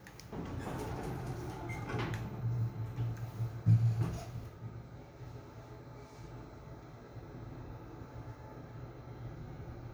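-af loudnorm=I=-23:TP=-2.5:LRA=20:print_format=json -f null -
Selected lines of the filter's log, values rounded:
"input_i" : "-40.8",
"input_tp" : "-17.2",
"input_lra" : "13.6",
"input_thresh" : "-51.0",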